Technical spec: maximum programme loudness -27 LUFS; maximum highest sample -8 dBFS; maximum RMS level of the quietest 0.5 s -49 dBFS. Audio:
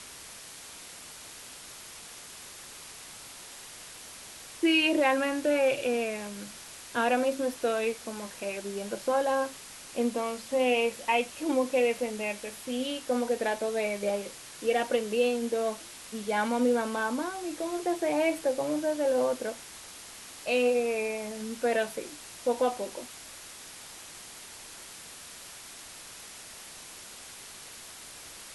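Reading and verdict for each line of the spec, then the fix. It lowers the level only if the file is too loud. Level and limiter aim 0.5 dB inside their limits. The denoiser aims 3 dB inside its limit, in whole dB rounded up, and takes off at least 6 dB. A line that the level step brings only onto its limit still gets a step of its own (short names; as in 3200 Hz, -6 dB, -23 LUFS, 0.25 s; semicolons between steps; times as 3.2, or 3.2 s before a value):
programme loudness -29.0 LUFS: OK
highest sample -14.0 dBFS: OK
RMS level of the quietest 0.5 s -46 dBFS: fail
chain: denoiser 6 dB, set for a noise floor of -46 dBFS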